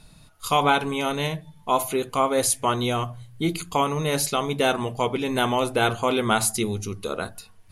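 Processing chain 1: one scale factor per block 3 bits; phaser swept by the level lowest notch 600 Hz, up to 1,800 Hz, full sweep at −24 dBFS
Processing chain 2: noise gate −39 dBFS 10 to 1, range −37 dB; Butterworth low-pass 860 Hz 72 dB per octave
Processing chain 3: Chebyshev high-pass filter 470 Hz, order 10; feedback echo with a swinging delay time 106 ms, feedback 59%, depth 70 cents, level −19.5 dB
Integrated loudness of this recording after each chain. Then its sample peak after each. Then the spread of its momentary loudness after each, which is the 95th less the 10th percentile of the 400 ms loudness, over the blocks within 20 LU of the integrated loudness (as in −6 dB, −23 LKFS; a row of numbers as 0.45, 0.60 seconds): −26.0, −27.0, −25.5 LKFS; −9.0, −12.5, −8.5 dBFS; 8, 7, 13 LU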